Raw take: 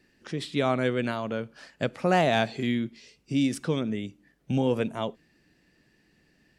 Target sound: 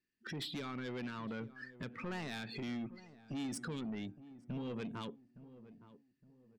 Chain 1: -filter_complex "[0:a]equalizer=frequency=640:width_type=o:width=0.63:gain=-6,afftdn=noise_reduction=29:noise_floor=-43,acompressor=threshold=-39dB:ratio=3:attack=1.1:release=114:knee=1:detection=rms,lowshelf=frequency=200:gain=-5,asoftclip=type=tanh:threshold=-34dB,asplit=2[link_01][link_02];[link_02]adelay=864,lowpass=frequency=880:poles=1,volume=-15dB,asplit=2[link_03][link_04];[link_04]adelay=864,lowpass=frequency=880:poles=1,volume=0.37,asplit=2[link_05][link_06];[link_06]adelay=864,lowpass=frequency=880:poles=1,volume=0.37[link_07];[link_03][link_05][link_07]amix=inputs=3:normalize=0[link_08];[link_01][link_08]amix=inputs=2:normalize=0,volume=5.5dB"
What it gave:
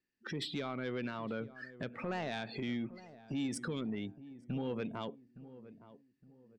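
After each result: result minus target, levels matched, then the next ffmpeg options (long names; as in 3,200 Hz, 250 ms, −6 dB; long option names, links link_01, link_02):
soft clipping: distortion −8 dB; 500 Hz band +2.5 dB
-filter_complex "[0:a]equalizer=frequency=640:width_type=o:width=0.63:gain=-6,afftdn=noise_reduction=29:noise_floor=-43,acompressor=threshold=-39dB:ratio=3:attack=1.1:release=114:knee=1:detection=rms,lowshelf=frequency=200:gain=-5,asoftclip=type=tanh:threshold=-42dB,asplit=2[link_01][link_02];[link_02]adelay=864,lowpass=frequency=880:poles=1,volume=-15dB,asplit=2[link_03][link_04];[link_04]adelay=864,lowpass=frequency=880:poles=1,volume=0.37,asplit=2[link_05][link_06];[link_06]adelay=864,lowpass=frequency=880:poles=1,volume=0.37[link_07];[link_03][link_05][link_07]amix=inputs=3:normalize=0[link_08];[link_01][link_08]amix=inputs=2:normalize=0,volume=5.5dB"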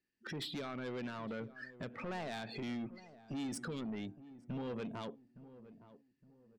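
500 Hz band +2.5 dB
-filter_complex "[0:a]equalizer=frequency=640:width_type=o:width=0.63:gain=-16,afftdn=noise_reduction=29:noise_floor=-43,acompressor=threshold=-39dB:ratio=3:attack=1.1:release=114:knee=1:detection=rms,lowshelf=frequency=200:gain=-5,asoftclip=type=tanh:threshold=-42dB,asplit=2[link_01][link_02];[link_02]adelay=864,lowpass=frequency=880:poles=1,volume=-15dB,asplit=2[link_03][link_04];[link_04]adelay=864,lowpass=frequency=880:poles=1,volume=0.37,asplit=2[link_05][link_06];[link_06]adelay=864,lowpass=frequency=880:poles=1,volume=0.37[link_07];[link_03][link_05][link_07]amix=inputs=3:normalize=0[link_08];[link_01][link_08]amix=inputs=2:normalize=0,volume=5.5dB"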